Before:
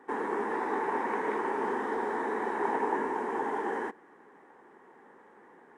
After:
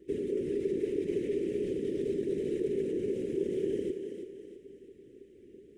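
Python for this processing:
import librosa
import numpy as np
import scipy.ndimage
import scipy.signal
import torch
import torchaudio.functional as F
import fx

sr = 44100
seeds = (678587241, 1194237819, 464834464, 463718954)

p1 = scipy.signal.sosfilt(scipy.signal.ellip(3, 1.0, 40, [320.0, 2700.0], 'bandstop', fs=sr, output='sos'), x)
p2 = fx.whisperise(p1, sr, seeds[0])
p3 = fx.low_shelf(p2, sr, hz=72.0, db=7.5)
p4 = fx.over_compress(p3, sr, threshold_db=-42.0, ratio=-0.5)
p5 = p3 + F.gain(torch.from_numpy(p4), 0.5).numpy()
p6 = fx.add_hum(p5, sr, base_hz=60, snr_db=30)
p7 = fx.small_body(p6, sr, hz=(400.0, 1400.0), ring_ms=40, db=16)
p8 = p7 + fx.echo_thinned(p7, sr, ms=329, feedback_pct=43, hz=190.0, wet_db=-7.0, dry=0)
y = F.gain(torch.from_numpy(p8), -6.0).numpy()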